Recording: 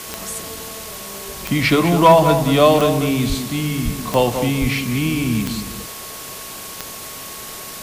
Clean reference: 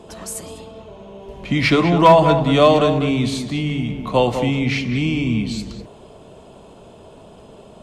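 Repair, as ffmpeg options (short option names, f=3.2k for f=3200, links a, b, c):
-filter_complex "[0:a]adeclick=t=4,bandreject=f=1.1k:w=30,asplit=3[a][b][c];[a]afade=t=out:st=3.28:d=0.02[d];[b]highpass=f=140:w=0.5412,highpass=f=140:w=1.3066,afade=t=in:st=3.28:d=0.02,afade=t=out:st=3.4:d=0.02[e];[c]afade=t=in:st=3.4:d=0.02[f];[d][e][f]amix=inputs=3:normalize=0,asplit=3[g][h][i];[g]afade=t=out:st=3.84:d=0.02[j];[h]highpass=f=140:w=0.5412,highpass=f=140:w=1.3066,afade=t=in:st=3.84:d=0.02,afade=t=out:st=3.96:d=0.02[k];[i]afade=t=in:st=3.96:d=0.02[l];[j][k][l]amix=inputs=3:normalize=0,asplit=3[m][n][o];[m]afade=t=out:st=4.6:d=0.02[p];[n]highpass=f=140:w=0.5412,highpass=f=140:w=1.3066,afade=t=in:st=4.6:d=0.02,afade=t=out:st=4.72:d=0.02[q];[o]afade=t=in:st=4.72:d=0.02[r];[p][q][r]amix=inputs=3:normalize=0,afwtdn=0.025"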